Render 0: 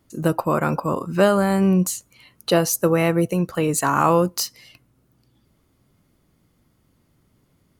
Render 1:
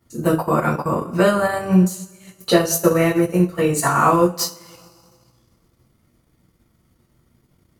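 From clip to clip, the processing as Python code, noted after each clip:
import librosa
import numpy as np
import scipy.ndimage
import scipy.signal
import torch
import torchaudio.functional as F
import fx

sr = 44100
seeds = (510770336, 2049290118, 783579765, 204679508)

y = fx.rev_double_slope(x, sr, seeds[0], early_s=0.35, late_s=1.8, knee_db=-19, drr_db=-7.0)
y = fx.transient(y, sr, attack_db=3, sustain_db=-8)
y = F.gain(torch.from_numpy(y), -5.5).numpy()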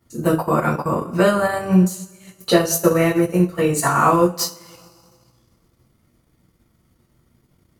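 y = x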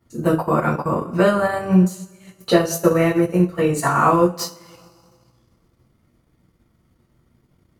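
y = fx.high_shelf(x, sr, hz=4500.0, db=-7.5)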